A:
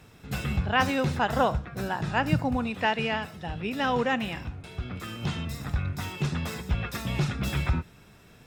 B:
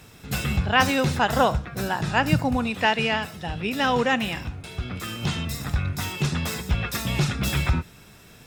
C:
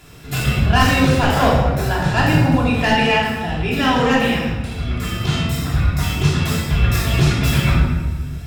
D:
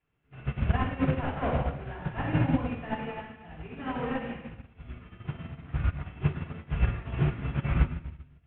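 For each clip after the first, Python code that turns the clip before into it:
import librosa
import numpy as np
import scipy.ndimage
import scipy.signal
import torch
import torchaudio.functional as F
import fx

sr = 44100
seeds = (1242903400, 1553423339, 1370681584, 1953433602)

y1 = fx.high_shelf(x, sr, hz=3500.0, db=7.5)
y1 = F.gain(torch.from_numpy(y1), 3.5).numpy()
y2 = np.clip(y1, -10.0 ** (-15.0 / 20.0), 10.0 ** (-15.0 / 20.0))
y2 = fx.room_shoebox(y2, sr, seeds[0], volume_m3=860.0, walls='mixed', distance_m=3.1)
y3 = fx.cvsd(y2, sr, bps=16000)
y3 = fx.upward_expand(y3, sr, threshold_db=-31.0, expansion=2.5)
y3 = F.gain(torch.from_numpy(y3), -5.0).numpy()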